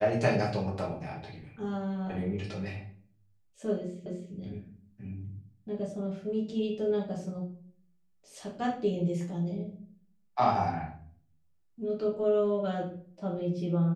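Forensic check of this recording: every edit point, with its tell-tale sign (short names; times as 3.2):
4.06 repeat of the last 0.26 s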